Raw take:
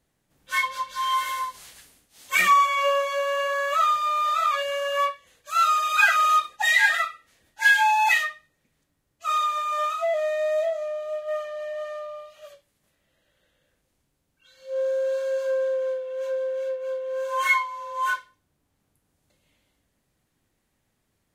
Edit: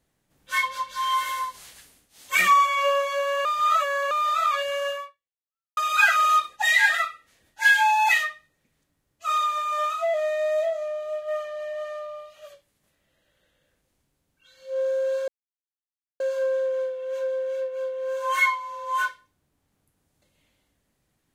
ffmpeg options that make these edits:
-filter_complex "[0:a]asplit=5[a][b][c][d][e];[a]atrim=end=3.452[f];[b]atrim=start=3.448:end=4.112,asetpts=PTS-STARTPTS,areverse[g];[c]atrim=start=4.108:end=5.77,asetpts=PTS-STARTPTS,afade=t=out:st=0.792:d=0.87:c=exp[h];[d]atrim=start=5.77:end=15.28,asetpts=PTS-STARTPTS,afade=t=in:d=0.004:c=hsin,afade=t=out:st=9.506:d=0.004:c=hsin,apad=pad_dur=0.92[i];[e]atrim=start=15.28,asetpts=PTS-STARTPTS,afade=t=in:d=0.004:c=hsin[j];[f][g]acrossfade=d=0.004:c1=hsin:c2=hsin[k];[h][i][j]concat=n=3:v=0:a=1[l];[k][l]acrossfade=d=0.004:c1=hsin:c2=hsin"

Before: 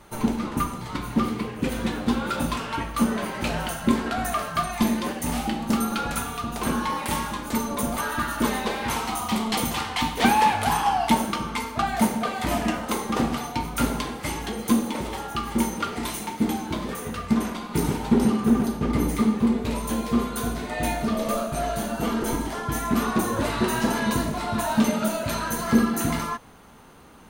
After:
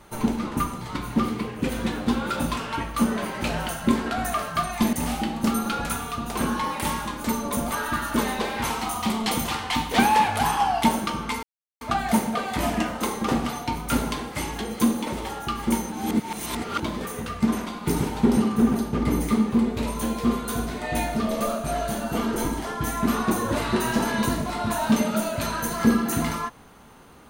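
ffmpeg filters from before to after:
-filter_complex "[0:a]asplit=5[a][b][c][d][e];[a]atrim=end=4.932[f];[b]atrim=start=5.188:end=11.69,asetpts=PTS-STARTPTS,afade=t=out:st=6.498:d=0.004:c=hsin,apad=pad_dur=0.38[g];[c]atrim=start=11.69:end=15.802,asetpts=PTS-STARTPTS,afade=t=in:d=0.004:c=hsin[h];[d]atrim=start=15.798:end=16.682,asetpts=PTS-STARTPTS,areverse[i];[e]atrim=start=16.678[j];[g][h]concat=n=2:v=0:a=1[k];[f][k]acrossfade=d=0.004:c1=hsin:c2=hsin[l];[l][i]acrossfade=d=0.004:c1=hsin:c2=hsin[m];[m][j]acrossfade=d=0.004:c1=hsin:c2=hsin"

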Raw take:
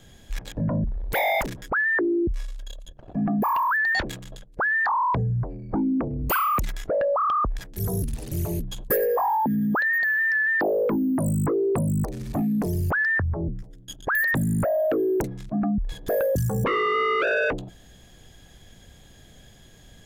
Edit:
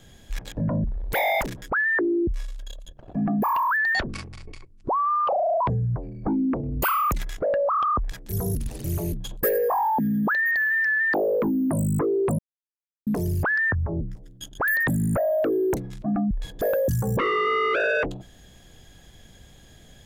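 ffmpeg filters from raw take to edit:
-filter_complex "[0:a]asplit=5[a][b][c][d][e];[a]atrim=end=4.014[f];[b]atrim=start=4.01:end=5.08,asetpts=PTS-STARTPTS,asetrate=29547,aresample=44100,atrim=end_sample=70428,asetpts=PTS-STARTPTS[g];[c]atrim=start=5.076:end=11.86,asetpts=PTS-STARTPTS,afade=t=out:st=6.78:d=0.004:c=hsin[h];[d]atrim=start=11.86:end=12.54,asetpts=PTS-STARTPTS,volume=0[i];[e]atrim=start=12.54,asetpts=PTS-STARTPTS,afade=t=in:d=0.004:c=hsin[j];[f][g]acrossfade=d=0.004:c1=hsin:c2=hsin[k];[h][i][j]concat=n=3:v=0:a=1[l];[k][l]acrossfade=d=0.004:c1=hsin:c2=hsin"

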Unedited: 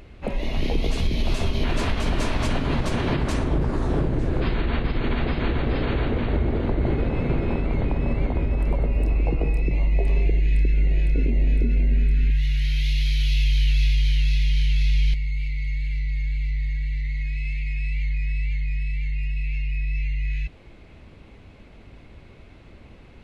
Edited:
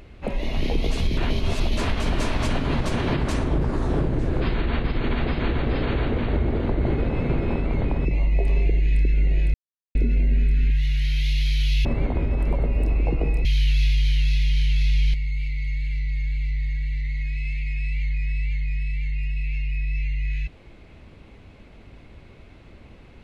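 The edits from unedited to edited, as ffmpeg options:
-filter_complex "[0:a]asplit=8[a][b][c][d][e][f][g][h];[a]atrim=end=1.172[i];[b]atrim=start=1.168:end=1.772,asetpts=PTS-STARTPTS,areverse[j];[c]atrim=start=1.768:end=8.052[k];[d]atrim=start=9.648:end=11.14,asetpts=PTS-STARTPTS,afade=t=out:st=1.488:d=0.004:c=hsin[l];[e]atrim=start=11.14:end=11.55,asetpts=PTS-STARTPTS,volume=0[m];[f]atrim=start=11.55:end=13.452,asetpts=PTS-STARTPTS,afade=t=in:d=0.004:c=hsin[n];[g]atrim=start=8.048:end=9.652[o];[h]atrim=start=13.448[p];[i][j]acrossfade=d=0.004:c1=hsin:c2=hsin[q];[q][k]acrossfade=d=0.004:c1=hsin:c2=hsin[r];[l][m][n]concat=n=3:v=0:a=1[s];[r][s]acrossfade=d=0.004:c1=hsin:c2=hsin[t];[t][o]acrossfade=d=0.004:c1=hsin:c2=hsin[u];[u][p]acrossfade=d=0.004:c1=hsin:c2=hsin"

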